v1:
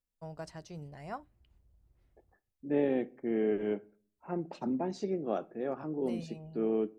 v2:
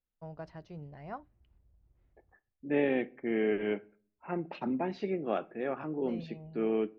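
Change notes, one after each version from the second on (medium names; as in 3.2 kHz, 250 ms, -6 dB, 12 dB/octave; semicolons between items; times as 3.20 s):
second voice: add peaking EQ 2.5 kHz +14.5 dB 1.8 oct; master: add distance through air 280 m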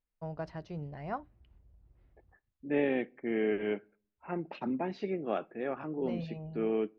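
first voice +5.0 dB; second voice: send -7.0 dB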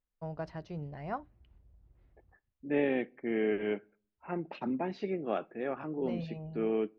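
no change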